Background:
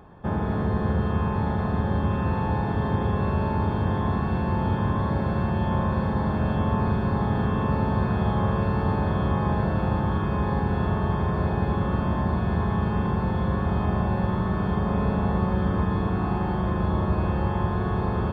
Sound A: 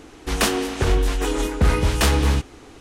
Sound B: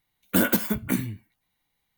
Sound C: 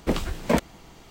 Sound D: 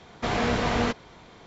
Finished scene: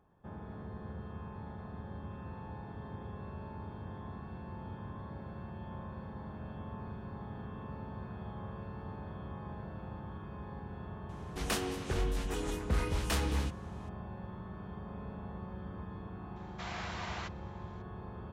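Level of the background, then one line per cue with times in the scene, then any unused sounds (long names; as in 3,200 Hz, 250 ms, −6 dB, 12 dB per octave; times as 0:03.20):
background −20 dB
0:11.09: mix in A −14 dB
0:16.36: mix in D −12.5 dB + high-pass filter 740 Hz 24 dB per octave
not used: B, C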